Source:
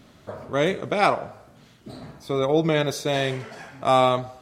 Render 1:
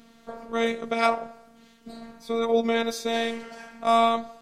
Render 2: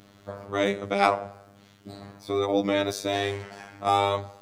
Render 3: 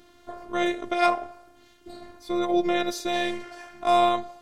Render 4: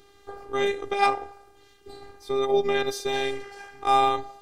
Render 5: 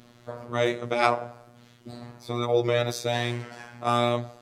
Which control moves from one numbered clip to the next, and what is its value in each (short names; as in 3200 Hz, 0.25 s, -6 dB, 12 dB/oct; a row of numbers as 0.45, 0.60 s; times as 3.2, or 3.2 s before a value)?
robotiser, frequency: 230, 100, 350, 400, 120 Hz